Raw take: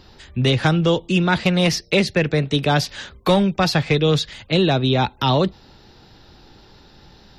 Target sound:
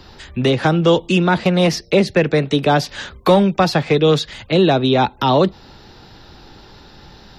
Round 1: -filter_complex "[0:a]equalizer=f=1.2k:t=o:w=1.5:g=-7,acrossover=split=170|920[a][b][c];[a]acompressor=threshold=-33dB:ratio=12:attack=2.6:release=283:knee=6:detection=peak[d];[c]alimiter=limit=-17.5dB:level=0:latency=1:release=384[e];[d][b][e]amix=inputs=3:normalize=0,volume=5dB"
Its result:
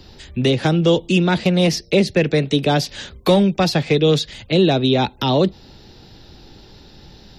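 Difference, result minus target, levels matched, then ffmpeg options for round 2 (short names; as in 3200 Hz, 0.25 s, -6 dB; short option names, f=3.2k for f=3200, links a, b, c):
1000 Hz band -4.0 dB
-filter_complex "[0:a]equalizer=f=1.2k:t=o:w=1.5:g=2.5,acrossover=split=170|920[a][b][c];[a]acompressor=threshold=-33dB:ratio=12:attack=2.6:release=283:knee=6:detection=peak[d];[c]alimiter=limit=-17.5dB:level=0:latency=1:release=384[e];[d][b][e]amix=inputs=3:normalize=0,volume=5dB"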